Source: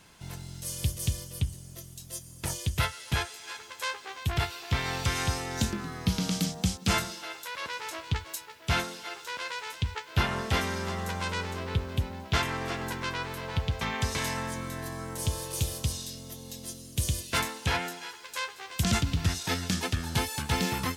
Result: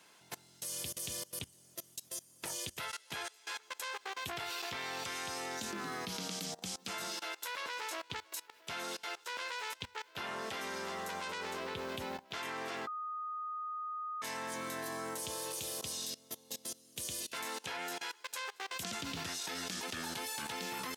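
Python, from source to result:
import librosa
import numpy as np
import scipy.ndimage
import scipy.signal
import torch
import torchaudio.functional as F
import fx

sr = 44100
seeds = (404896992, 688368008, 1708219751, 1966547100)

y = fx.edit(x, sr, fx.bleep(start_s=12.87, length_s=1.35, hz=1240.0, db=-19.0), tone=tone)
y = scipy.signal.sosfilt(scipy.signal.butter(2, 320.0, 'highpass', fs=sr, output='sos'), y)
y = fx.level_steps(y, sr, step_db=22)
y = y * librosa.db_to_amplitude(3.5)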